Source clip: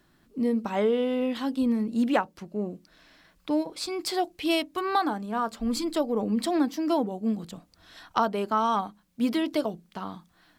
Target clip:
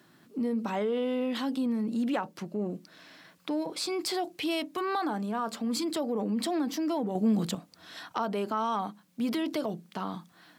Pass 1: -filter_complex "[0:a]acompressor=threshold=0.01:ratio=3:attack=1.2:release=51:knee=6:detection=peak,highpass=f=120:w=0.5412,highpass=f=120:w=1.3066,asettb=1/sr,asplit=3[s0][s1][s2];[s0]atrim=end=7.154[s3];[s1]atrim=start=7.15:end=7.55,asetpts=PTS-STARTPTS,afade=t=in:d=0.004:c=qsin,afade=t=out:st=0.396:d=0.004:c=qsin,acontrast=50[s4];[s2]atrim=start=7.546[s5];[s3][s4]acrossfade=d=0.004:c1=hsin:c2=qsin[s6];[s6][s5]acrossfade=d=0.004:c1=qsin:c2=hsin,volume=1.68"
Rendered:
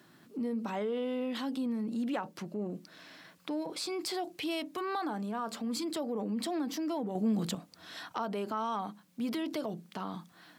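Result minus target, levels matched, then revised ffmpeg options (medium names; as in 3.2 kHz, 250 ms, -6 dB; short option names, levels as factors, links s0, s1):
compression: peak gain reduction +4.5 dB
-filter_complex "[0:a]acompressor=threshold=0.0211:ratio=3:attack=1.2:release=51:knee=6:detection=peak,highpass=f=120:w=0.5412,highpass=f=120:w=1.3066,asettb=1/sr,asplit=3[s0][s1][s2];[s0]atrim=end=7.154[s3];[s1]atrim=start=7.15:end=7.55,asetpts=PTS-STARTPTS,afade=t=in:d=0.004:c=qsin,afade=t=out:st=0.396:d=0.004:c=qsin,acontrast=50[s4];[s2]atrim=start=7.546[s5];[s3][s4]acrossfade=d=0.004:c1=hsin:c2=qsin[s6];[s6][s5]acrossfade=d=0.004:c1=qsin:c2=hsin,volume=1.68"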